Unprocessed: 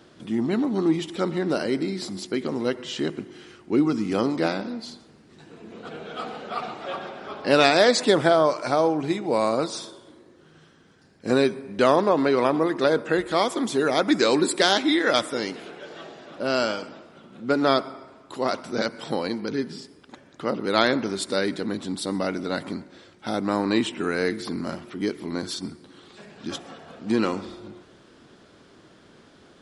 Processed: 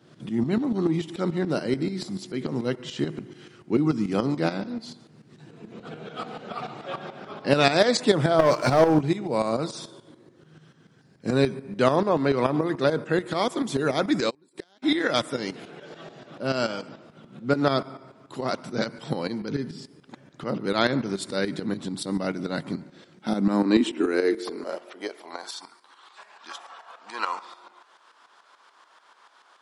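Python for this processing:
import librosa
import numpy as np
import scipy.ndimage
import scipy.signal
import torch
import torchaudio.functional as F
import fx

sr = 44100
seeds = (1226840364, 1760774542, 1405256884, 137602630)

y = fx.filter_sweep_highpass(x, sr, from_hz=130.0, to_hz=980.0, start_s=22.8, end_s=25.73, q=3.3)
y = fx.leveller(y, sr, passes=2, at=(8.39, 9.01))
y = fx.tremolo_shape(y, sr, shape='saw_up', hz=6.9, depth_pct=70)
y = fx.gate_flip(y, sr, shuts_db=-18.0, range_db=-37, at=(14.29, 14.82), fade=0.02)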